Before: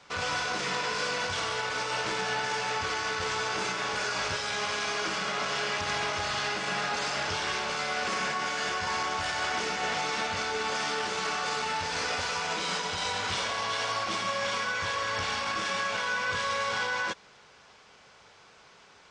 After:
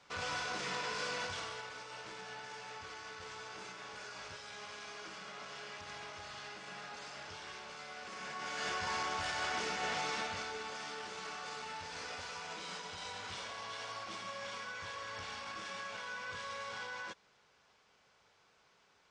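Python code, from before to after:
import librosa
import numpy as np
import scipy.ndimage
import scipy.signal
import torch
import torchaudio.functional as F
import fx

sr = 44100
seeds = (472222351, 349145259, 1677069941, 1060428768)

y = fx.gain(x, sr, db=fx.line((1.22, -8.0), (1.82, -17.0), (8.11, -17.0), (8.68, -6.5), (10.11, -6.5), (10.73, -13.5)))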